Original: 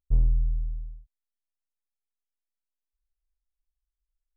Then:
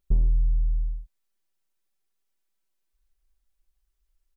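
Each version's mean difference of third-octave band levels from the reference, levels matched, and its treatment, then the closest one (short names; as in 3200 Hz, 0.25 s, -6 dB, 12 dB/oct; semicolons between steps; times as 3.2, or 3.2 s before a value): 2.5 dB: compressor 3:1, threshold -31 dBFS, peak gain reduction 11 dB; bell 320 Hz +7 dB 0.47 oct; comb 5.2 ms, depth 57%; gain +8.5 dB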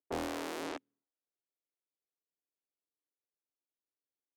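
22.0 dB: in parallel at -3.5 dB: sample gate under -28 dBFS; on the sum: low-pass opened by the level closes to 480 Hz, open at -19 dBFS; Chebyshev high-pass 270 Hz, order 5; Doppler distortion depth 0.52 ms; gain +7.5 dB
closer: first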